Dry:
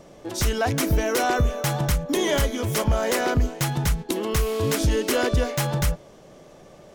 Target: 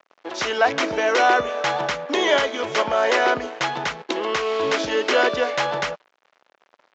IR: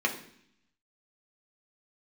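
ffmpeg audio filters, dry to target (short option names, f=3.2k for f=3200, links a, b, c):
-af "aresample=16000,aeval=exprs='sgn(val(0))*max(abs(val(0))-0.00794,0)':c=same,aresample=44100,highpass=530,lowpass=3.5k,volume=8.5dB"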